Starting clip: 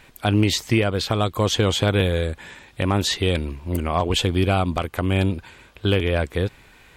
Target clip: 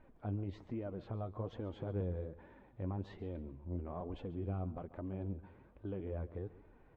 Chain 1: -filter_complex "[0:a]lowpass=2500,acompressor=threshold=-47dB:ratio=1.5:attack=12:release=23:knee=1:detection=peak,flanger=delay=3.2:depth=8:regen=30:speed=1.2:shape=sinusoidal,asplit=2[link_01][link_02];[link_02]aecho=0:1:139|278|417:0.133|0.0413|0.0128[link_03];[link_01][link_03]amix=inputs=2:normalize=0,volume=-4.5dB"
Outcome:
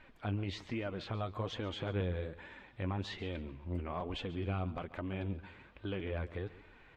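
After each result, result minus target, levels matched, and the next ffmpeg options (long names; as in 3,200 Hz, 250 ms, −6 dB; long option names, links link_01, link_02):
2,000 Hz band +12.5 dB; downward compressor: peak gain reduction −2.5 dB
-filter_complex "[0:a]lowpass=750,acompressor=threshold=-47dB:ratio=1.5:attack=12:release=23:knee=1:detection=peak,flanger=delay=3.2:depth=8:regen=30:speed=1.2:shape=sinusoidal,asplit=2[link_01][link_02];[link_02]aecho=0:1:139|278|417:0.133|0.0413|0.0128[link_03];[link_01][link_03]amix=inputs=2:normalize=0,volume=-4.5dB"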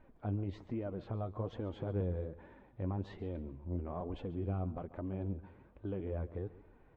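downward compressor: peak gain reduction −2.5 dB
-filter_complex "[0:a]lowpass=750,acompressor=threshold=-54.5dB:ratio=1.5:attack=12:release=23:knee=1:detection=peak,flanger=delay=3.2:depth=8:regen=30:speed=1.2:shape=sinusoidal,asplit=2[link_01][link_02];[link_02]aecho=0:1:139|278|417:0.133|0.0413|0.0128[link_03];[link_01][link_03]amix=inputs=2:normalize=0,volume=-4.5dB"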